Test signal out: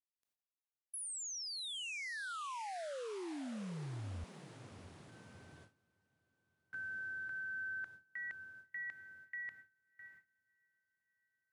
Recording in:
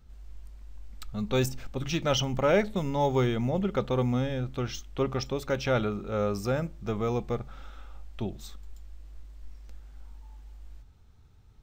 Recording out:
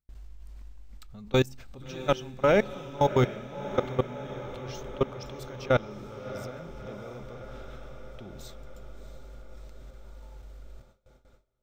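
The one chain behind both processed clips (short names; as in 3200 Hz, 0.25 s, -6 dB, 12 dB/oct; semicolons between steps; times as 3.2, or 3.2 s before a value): level quantiser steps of 24 dB; diffused feedback echo 0.668 s, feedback 68%, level -13 dB; gate with hold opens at -52 dBFS; gain +4.5 dB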